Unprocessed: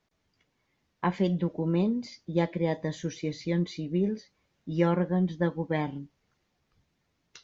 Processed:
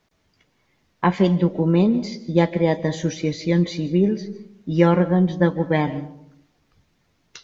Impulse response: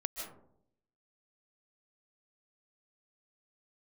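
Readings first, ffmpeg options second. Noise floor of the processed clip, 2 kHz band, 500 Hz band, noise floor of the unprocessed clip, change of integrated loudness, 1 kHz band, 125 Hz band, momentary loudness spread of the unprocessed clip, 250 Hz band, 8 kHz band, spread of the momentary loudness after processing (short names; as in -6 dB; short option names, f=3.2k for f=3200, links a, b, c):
-67 dBFS, +9.0 dB, +9.0 dB, -76 dBFS, +9.0 dB, +9.0 dB, +9.0 dB, 8 LU, +9.0 dB, n/a, 9 LU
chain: -filter_complex "[0:a]asplit=2[a][b];[1:a]atrim=start_sample=2205[c];[b][c]afir=irnorm=-1:irlink=0,volume=-10.5dB[d];[a][d]amix=inputs=2:normalize=0,volume=7dB"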